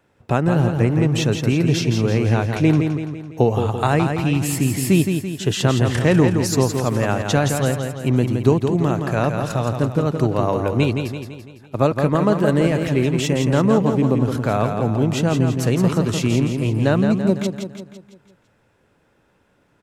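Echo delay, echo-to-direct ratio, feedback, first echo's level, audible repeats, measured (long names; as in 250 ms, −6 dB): 168 ms, −5.0 dB, 50%, −6.0 dB, 5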